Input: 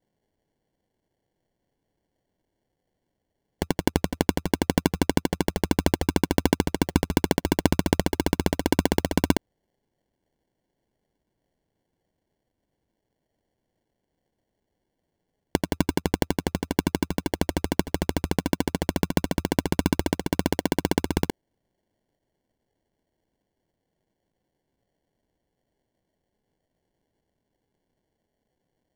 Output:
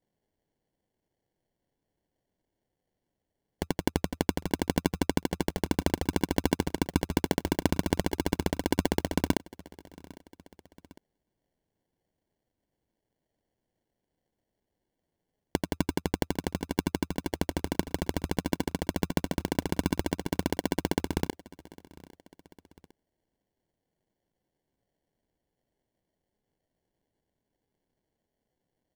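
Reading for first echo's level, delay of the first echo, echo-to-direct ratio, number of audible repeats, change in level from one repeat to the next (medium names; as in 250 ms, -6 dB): -22.0 dB, 804 ms, -21.0 dB, 2, -5.0 dB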